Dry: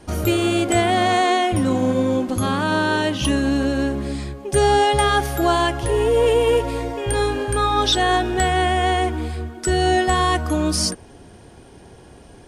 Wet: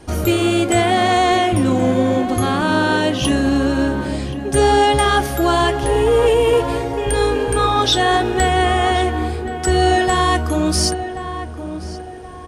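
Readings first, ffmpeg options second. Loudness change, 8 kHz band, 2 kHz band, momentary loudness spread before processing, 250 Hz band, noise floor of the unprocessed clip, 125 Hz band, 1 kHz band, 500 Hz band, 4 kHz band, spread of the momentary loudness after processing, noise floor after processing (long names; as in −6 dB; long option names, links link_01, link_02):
+3.0 dB, +2.5 dB, +2.5 dB, 7 LU, +3.5 dB, −45 dBFS, +3.0 dB, +3.0 dB, +3.0 dB, +2.5 dB, 10 LU, −30 dBFS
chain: -filter_complex "[0:a]flanger=delay=2.4:depth=7:regen=-73:speed=0.82:shape=sinusoidal,asplit=2[link_01][link_02];[link_02]adelay=1077,lowpass=frequency=1600:poles=1,volume=-10dB,asplit=2[link_03][link_04];[link_04]adelay=1077,lowpass=frequency=1600:poles=1,volume=0.38,asplit=2[link_05][link_06];[link_06]adelay=1077,lowpass=frequency=1600:poles=1,volume=0.38,asplit=2[link_07][link_08];[link_08]adelay=1077,lowpass=frequency=1600:poles=1,volume=0.38[link_09];[link_01][link_03][link_05][link_07][link_09]amix=inputs=5:normalize=0,acontrast=87"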